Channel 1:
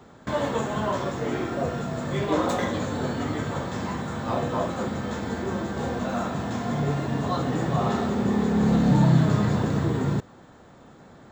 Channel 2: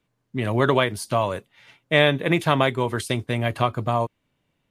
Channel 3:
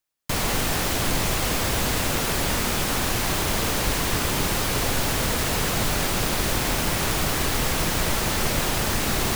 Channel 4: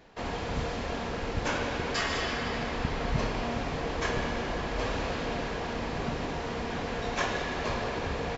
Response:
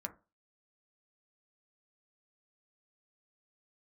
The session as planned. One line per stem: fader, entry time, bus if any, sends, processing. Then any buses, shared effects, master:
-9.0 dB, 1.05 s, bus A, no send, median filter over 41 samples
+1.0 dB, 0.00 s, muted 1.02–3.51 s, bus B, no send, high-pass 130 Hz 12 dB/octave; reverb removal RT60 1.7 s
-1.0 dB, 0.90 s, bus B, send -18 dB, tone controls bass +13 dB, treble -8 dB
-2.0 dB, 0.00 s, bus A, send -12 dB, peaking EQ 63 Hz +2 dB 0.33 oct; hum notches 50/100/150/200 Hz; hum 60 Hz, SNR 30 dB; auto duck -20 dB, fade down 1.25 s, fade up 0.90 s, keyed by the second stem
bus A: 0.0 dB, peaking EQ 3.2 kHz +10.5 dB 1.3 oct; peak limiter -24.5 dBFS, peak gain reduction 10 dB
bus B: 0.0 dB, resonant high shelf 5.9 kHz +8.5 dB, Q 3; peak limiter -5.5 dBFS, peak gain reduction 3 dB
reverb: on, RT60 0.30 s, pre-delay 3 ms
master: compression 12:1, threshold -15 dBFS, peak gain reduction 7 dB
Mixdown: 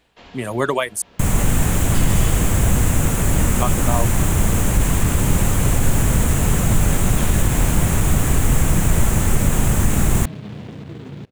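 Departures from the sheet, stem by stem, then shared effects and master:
stem 4 -2.0 dB -> -9.0 dB; master: missing compression 12:1, threshold -15 dBFS, peak gain reduction 7 dB

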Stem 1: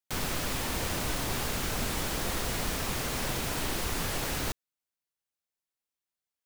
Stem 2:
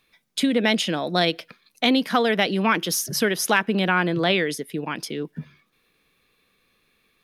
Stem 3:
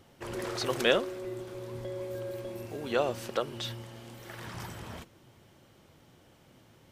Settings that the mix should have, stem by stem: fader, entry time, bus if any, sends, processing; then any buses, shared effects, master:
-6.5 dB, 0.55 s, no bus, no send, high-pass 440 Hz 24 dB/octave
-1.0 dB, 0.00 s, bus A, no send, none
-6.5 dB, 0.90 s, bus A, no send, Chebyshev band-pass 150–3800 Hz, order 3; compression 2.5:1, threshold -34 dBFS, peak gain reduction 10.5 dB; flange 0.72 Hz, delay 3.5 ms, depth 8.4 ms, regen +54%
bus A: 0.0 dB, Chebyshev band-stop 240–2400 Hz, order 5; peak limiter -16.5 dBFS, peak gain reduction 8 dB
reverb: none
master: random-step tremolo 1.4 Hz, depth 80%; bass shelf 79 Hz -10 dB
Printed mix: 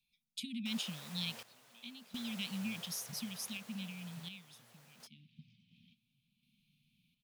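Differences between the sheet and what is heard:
stem 1 -6.5 dB -> -17.0 dB; stem 2 -1.0 dB -> -13.0 dB; master: missing bass shelf 79 Hz -10 dB

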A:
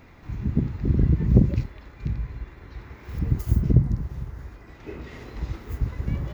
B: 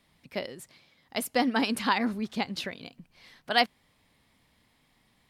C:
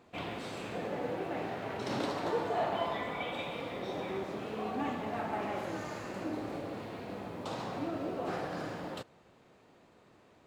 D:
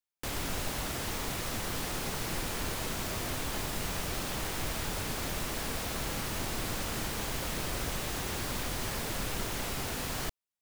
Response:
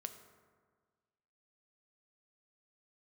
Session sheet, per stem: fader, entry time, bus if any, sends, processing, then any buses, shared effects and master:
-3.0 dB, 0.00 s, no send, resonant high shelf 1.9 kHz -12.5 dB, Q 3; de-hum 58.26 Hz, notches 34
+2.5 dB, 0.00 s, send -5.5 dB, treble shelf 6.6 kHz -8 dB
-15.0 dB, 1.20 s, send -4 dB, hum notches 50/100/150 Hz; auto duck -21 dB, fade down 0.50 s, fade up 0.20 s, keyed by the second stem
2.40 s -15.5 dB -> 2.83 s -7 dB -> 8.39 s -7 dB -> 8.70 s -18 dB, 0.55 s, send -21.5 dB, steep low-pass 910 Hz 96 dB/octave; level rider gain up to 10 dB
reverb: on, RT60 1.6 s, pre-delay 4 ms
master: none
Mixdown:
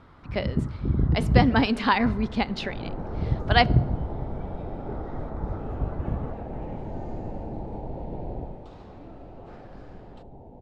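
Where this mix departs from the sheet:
stem A: missing de-hum 58.26 Hz, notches 34; master: extra distance through air 85 m

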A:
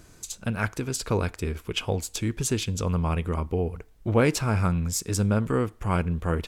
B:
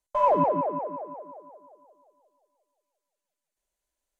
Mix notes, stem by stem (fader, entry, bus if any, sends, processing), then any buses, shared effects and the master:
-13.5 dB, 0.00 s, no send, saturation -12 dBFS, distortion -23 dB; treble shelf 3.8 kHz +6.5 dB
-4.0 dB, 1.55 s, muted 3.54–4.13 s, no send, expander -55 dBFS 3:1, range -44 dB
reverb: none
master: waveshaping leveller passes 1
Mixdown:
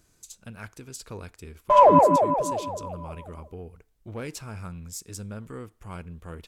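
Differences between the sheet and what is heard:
stem B -4.0 dB -> +7.0 dB; master: missing waveshaping leveller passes 1

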